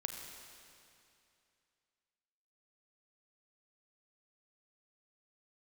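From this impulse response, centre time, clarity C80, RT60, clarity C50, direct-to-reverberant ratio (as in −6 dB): 73 ms, 4.5 dB, 2.6 s, 4.0 dB, 3.5 dB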